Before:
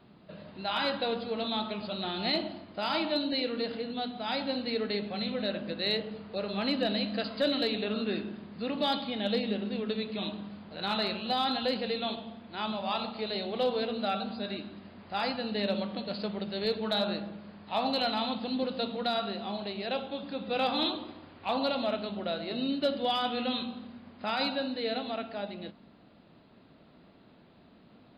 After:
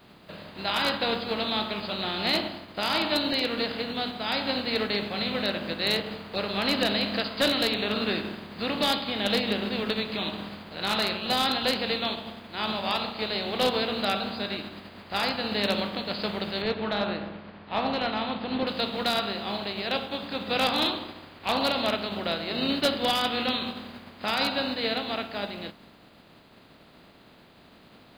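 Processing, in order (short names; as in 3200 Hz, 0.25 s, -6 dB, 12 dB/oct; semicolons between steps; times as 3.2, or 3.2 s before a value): spectral contrast lowered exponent 0.62; 16.62–18.67 air absorption 290 m; gain +4 dB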